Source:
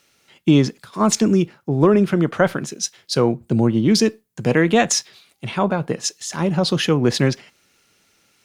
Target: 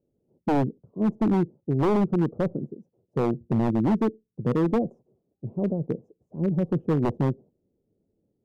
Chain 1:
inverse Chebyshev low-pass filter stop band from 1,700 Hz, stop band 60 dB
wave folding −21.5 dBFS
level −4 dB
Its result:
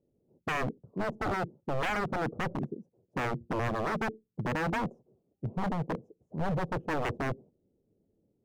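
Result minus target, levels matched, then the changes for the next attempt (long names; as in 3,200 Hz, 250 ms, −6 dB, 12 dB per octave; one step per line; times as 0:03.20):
wave folding: distortion +26 dB
change: wave folding −12 dBFS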